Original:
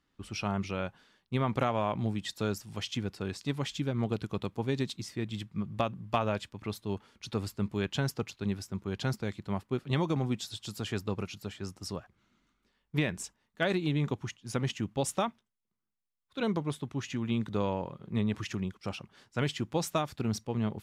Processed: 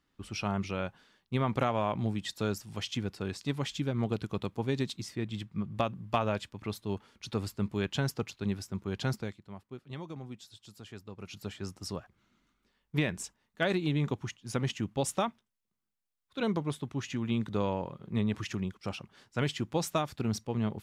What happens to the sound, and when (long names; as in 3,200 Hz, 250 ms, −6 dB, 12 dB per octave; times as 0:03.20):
0:05.15–0:05.75: high-shelf EQ 4,900 Hz −4.5 dB
0:09.19–0:11.38: duck −12.5 dB, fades 0.19 s